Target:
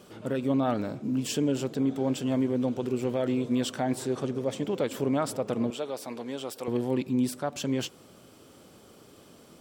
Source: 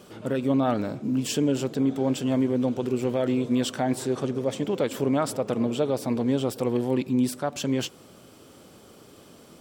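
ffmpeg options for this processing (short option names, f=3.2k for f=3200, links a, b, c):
-filter_complex "[0:a]asettb=1/sr,asplit=3[a][b][c];[a]atrim=end=5.704[d];[b]atrim=start=5.7:end=6.68,asetpts=PTS-STARTPTS,afade=t=in:d=0.004:c=qsin,afade=t=out:st=0.976:d=0.004:c=qsin,highpass=f=810:p=1[e];[c]atrim=start=6.676[f];[d][e]acrossfade=d=0.004:c1=hsin:c2=qsin[g];[g][f]acrossfade=d=0.004:c1=qsin:c2=hsin,volume=-3dB"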